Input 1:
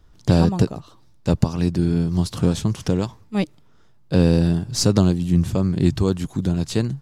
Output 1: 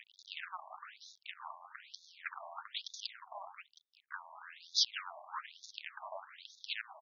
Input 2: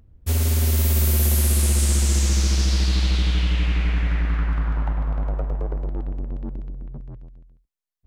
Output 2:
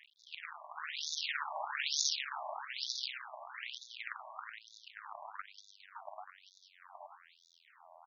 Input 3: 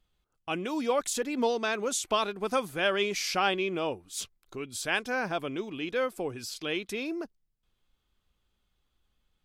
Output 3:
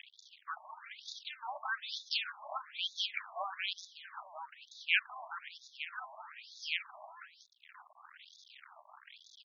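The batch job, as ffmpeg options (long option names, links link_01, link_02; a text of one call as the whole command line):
ffmpeg -i in.wav -filter_complex "[0:a]aeval=exprs='val(0)+0.5*0.0631*sgn(val(0))':channel_layout=same,afftfilt=real='re*lt(hypot(re,im),0.708)':imag='im*lt(hypot(re,im),0.708)':win_size=1024:overlap=0.75,aderivative,asplit=2[link_01][link_02];[link_02]acompressor=threshold=-41dB:ratio=5,volume=2dB[link_03];[link_01][link_03]amix=inputs=2:normalize=0,asoftclip=type=hard:threshold=-9.5dB,adynamicsmooth=sensitivity=3.5:basefreq=530,acrossover=split=1000|3500[link_04][link_05][link_06];[link_06]adelay=190[link_07];[link_04]adelay=570[link_08];[link_08][link_05][link_07]amix=inputs=3:normalize=0,aresample=16000,aresample=44100,afftfilt=real='re*between(b*sr/1024,800*pow(4900/800,0.5+0.5*sin(2*PI*1.1*pts/sr))/1.41,800*pow(4900/800,0.5+0.5*sin(2*PI*1.1*pts/sr))*1.41)':imag='im*between(b*sr/1024,800*pow(4900/800,0.5+0.5*sin(2*PI*1.1*pts/sr))/1.41,800*pow(4900/800,0.5+0.5*sin(2*PI*1.1*pts/sr))*1.41)':win_size=1024:overlap=0.75,volume=11dB" out.wav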